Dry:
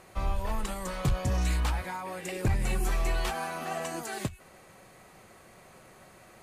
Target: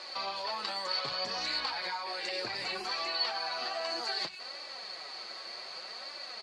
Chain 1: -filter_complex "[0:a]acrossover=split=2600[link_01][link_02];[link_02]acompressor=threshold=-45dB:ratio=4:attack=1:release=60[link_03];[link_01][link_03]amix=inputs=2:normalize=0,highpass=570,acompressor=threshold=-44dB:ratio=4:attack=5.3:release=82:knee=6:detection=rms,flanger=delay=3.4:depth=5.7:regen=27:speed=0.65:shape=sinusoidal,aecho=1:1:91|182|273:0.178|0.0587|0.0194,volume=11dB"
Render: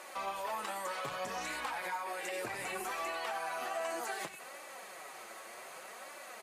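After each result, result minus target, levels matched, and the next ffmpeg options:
4,000 Hz band −9.5 dB; echo-to-direct +10 dB
-filter_complex "[0:a]acrossover=split=2600[link_01][link_02];[link_02]acompressor=threshold=-45dB:ratio=4:attack=1:release=60[link_03];[link_01][link_03]amix=inputs=2:normalize=0,highpass=570,acompressor=threshold=-44dB:ratio=4:attack=5.3:release=82:knee=6:detection=rms,lowpass=frequency=4500:width_type=q:width=16,flanger=delay=3.4:depth=5.7:regen=27:speed=0.65:shape=sinusoidal,aecho=1:1:91|182|273:0.178|0.0587|0.0194,volume=11dB"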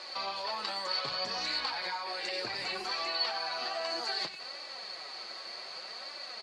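echo-to-direct +10 dB
-filter_complex "[0:a]acrossover=split=2600[link_01][link_02];[link_02]acompressor=threshold=-45dB:ratio=4:attack=1:release=60[link_03];[link_01][link_03]amix=inputs=2:normalize=0,highpass=570,acompressor=threshold=-44dB:ratio=4:attack=5.3:release=82:knee=6:detection=rms,lowpass=frequency=4500:width_type=q:width=16,flanger=delay=3.4:depth=5.7:regen=27:speed=0.65:shape=sinusoidal,aecho=1:1:91|182:0.0562|0.0186,volume=11dB"

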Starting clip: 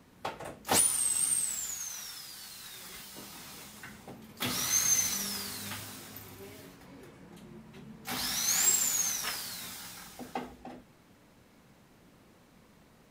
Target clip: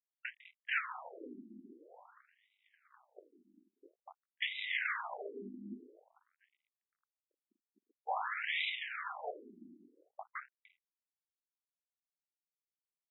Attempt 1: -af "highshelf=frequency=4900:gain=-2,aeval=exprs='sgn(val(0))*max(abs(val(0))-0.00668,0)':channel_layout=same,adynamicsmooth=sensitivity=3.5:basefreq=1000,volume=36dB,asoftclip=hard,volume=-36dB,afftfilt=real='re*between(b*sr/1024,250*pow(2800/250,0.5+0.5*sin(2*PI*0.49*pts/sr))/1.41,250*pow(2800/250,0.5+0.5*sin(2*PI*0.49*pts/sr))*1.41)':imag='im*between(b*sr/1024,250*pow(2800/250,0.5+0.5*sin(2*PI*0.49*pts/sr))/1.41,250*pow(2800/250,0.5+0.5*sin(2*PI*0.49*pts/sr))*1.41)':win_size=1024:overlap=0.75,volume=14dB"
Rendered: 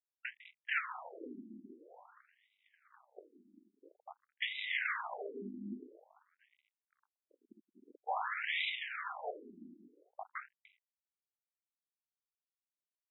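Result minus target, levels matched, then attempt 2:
250 Hz band +2.5 dB
-af "highpass=frequency=190:poles=1,highshelf=frequency=4900:gain=-2,aeval=exprs='sgn(val(0))*max(abs(val(0))-0.00668,0)':channel_layout=same,adynamicsmooth=sensitivity=3.5:basefreq=1000,volume=36dB,asoftclip=hard,volume=-36dB,afftfilt=real='re*between(b*sr/1024,250*pow(2800/250,0.5+0.5*sin(2*PI*0.49*pts/sr))/1.41,250*pow(2800/250,0.5+0.5*sin(2*PI*0.49*pts/sr))*1.41)':imag='im*between(b*sr/1024,250*pow(2800/250,0.5+0.5*sin(2*PI*0.49*pts/sr))/1.41,250*pow(2800/250,0.5+0.5*sin(2*PI*0.49*pts/sr))*1.41)':win_size=1024:overlap=0.75,volume=14dB"

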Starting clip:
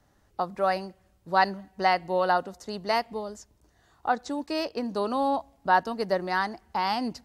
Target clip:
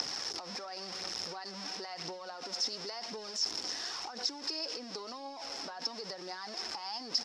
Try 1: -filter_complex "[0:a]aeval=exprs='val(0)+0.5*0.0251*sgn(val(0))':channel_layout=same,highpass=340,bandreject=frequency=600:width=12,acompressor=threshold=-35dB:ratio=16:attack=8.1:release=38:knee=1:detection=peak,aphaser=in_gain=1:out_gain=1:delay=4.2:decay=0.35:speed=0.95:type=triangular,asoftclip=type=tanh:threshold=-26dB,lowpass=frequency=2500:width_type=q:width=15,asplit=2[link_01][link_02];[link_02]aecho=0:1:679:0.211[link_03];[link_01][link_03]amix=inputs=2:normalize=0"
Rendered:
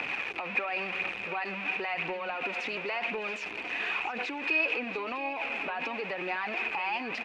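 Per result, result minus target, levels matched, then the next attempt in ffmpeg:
2,000 Hz band +12.0 dB; downward compressor: peak gain reduction −9 dB; echo-to-direct +11 dB
-filter_complex "[0:a]aeval=exprs='val(0)+0.5*0.0251*sgn(val(0))':channel_layout=same,highpass=340,bandreject=frequency=600:width=12,acompressor=threshold=-35dB:ratio=16:attack=8.1:release=38:knee=1:detection=peak,aphaser=in_gain=1:out_gain=1:delay=4.2:decay=0.35:speed=0.95:type=triangular,asoftclip=type=tanh:threshold=-26dB,lowpass=frequency=5300:width_type=q:width=15,asplit=2[link_01][link_02];[link_02]aecho=0:1:679:0.211[link_03];[link_01][link_03]amix=inputs=2:normalize=0"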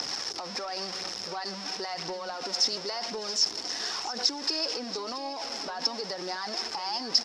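downward compressor: peak gain reduction −9 dB; echo-to-direct +11 dB
-filter_complex "[0:a]aeval=exprs='val(0)+0.5*0.0251*sgn(val(0))':channel_layout=same,highpass=340,bandreject=frequency=600:width=12,acompressor=threshold=-44.5dB:ratio=16:attack=8.1:release=38:knee=1:detection=peak,aphaser=in_gain=1:out_gain=1:delay=4.2:decay=0.35:speed=0.95:type=triangular,asoftclip=type=tanh:threshold=-26dB,lowpass=frequency=5300:width_type=q:width=15,asplit=2[link_01][link_02];[link_02]aecho=0:1:679:0.211[link_03];[link_01][link_03]amix=inputs=2:normalize=0"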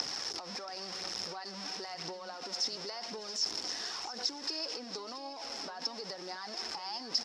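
echo-to-direct +11 dB
-filter_complex "[0:a]aeval=exprs='val(0)+0.5*0.0251*sgn(val(0))':channel_layout=same,highpass=340,bandreject=frequency=600:width=12,acompressor=threshold=-44.5dB:ratio=16:attack=8.1:release=38:knee=1:detection=peak,aphaser=in_gain=1:out_gain=1:delay=4.2:decay=0.35:speed=0.95:type=triangular,asoftclip=type=tanh:threshold=-26dB,lowpass=frequency=5300:width_type=q:width=15,asplit=2[link_01][link_02];[link_02]aecho=0:1:679:0.0596[link_03];[link_01][link_03]amix=inputs=2:normalize=0"

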